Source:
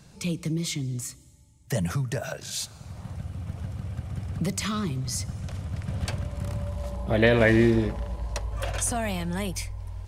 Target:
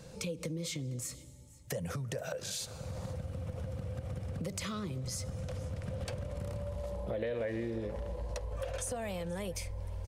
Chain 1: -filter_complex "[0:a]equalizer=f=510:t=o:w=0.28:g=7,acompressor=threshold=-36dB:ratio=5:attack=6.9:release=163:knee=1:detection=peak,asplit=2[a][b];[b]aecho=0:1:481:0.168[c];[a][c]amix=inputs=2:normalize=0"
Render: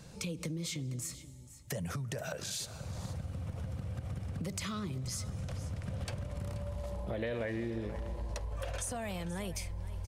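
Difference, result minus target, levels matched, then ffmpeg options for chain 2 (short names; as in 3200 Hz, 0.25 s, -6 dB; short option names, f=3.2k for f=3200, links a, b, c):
echo-to-direct +6 dB; 500 Hz band -3.0 dB
-filter_complex "[0:a]equalizer=f=510:t=o:w=0.28:g=17.5,acompressor=threshold=-36dB:ratio=5:attack=6.9:release=163:knee=1:detection=peak,asplit=2[a][b];[b]aecho=0:1:481:0.0841[c];[a][c]amix=inputs=2:normalize=0"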